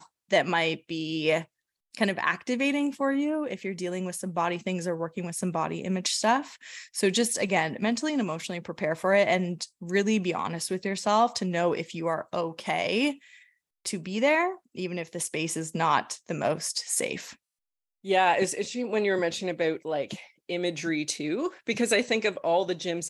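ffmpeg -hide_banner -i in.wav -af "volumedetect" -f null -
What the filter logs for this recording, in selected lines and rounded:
mean_volume: -28.2 dB
max_volume: -7.8 dB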